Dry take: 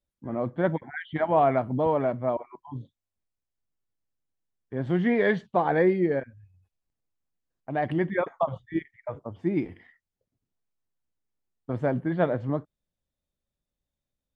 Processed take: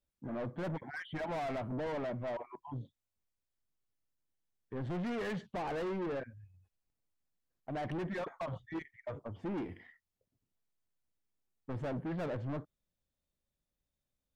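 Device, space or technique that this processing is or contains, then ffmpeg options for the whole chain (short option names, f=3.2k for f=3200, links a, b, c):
saturation between pre-emphasis and de-emphasis: -af "highshelf=f=2.6k:g=11,asoftclip=type=tanh:threshold=-32.5dB,highshelf=f=2.6k:g=-11,volume=-2dB"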